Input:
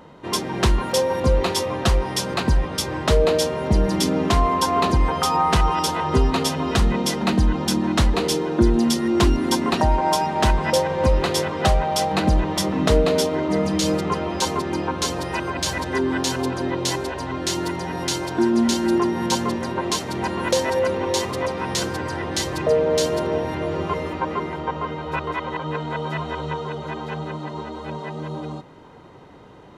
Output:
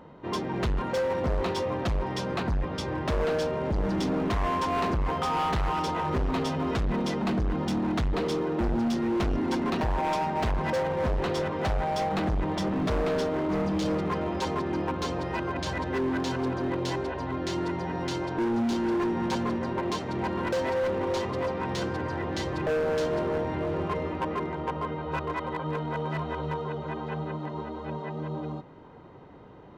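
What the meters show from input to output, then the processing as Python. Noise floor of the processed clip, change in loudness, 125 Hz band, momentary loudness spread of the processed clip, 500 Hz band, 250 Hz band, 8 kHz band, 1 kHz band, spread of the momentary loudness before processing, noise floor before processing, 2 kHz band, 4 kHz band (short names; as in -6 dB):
-38 dBFS, -7.0 dB, -7.0 dB, 5 LU, -6.5 dB, -6.0 dB, -18.0 dB, -6.5 dB, 9 LU, -34 dBFS, -7.0 dB, -12.5 dB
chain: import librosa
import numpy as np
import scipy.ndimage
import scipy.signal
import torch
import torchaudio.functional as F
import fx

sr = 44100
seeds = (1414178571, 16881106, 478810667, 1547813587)

y = fx.spacing_loss(x, sr, db_at_10k=22)
y = np.clip(y, -10.0 ** (-21.5 / 20.0), 10.0 ** (-21.5 / 20.0))
y = y * 10.0 ** (-2.5 / 20.0)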